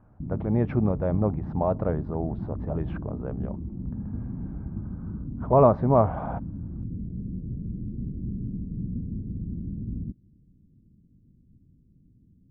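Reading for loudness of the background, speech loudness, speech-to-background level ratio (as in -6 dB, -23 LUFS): -35.0 LUFS, -25.5 LUFS, 9.5 dB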